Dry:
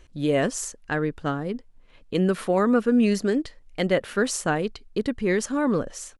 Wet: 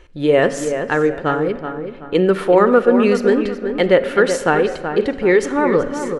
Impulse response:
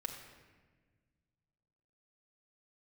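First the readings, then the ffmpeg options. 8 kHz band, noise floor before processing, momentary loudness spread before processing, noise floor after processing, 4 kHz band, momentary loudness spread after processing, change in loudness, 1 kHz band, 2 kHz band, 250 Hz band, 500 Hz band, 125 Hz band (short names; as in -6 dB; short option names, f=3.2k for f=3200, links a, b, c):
-0.5 dB, -53 dBFS, 9 LU, -34 dBFS, +5.0 dB, 9 LU, +8.0 dB, +10.0 dB, +9.0 dB, +5.0 dB, +11.0 dB, +3.0 dB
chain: -filter_complex "[0:a]bass=f=250:g=-7,treble=f=4k:g=-11,asplit=2[a][b];[b]adelay=377,lowpass=f=2.6k:p=1,volume=-8dB,asplit=2[c][d];[d]adelay=377,lowpass=f=2.6k:p=1,volume=0.37,asplit=2[e][f];[f]adelay=377,lowpass=f=2.6k:p=1,volume=0.37,asplit=2[g][h];[h]adelay=377,lowpass=f=2.6k:p=1,volume=0.37[i];[a][c][e][g][i]amix=inputs=5:normalize=0,asplit=2[j][k];[1:a]atrim=start_sample=2205[l];[k][l]afir=irnorm=-1:irlink=0,volume=-4dB[m];[j][m]amix=inputs=2:normalize=0,volume=6.5dB"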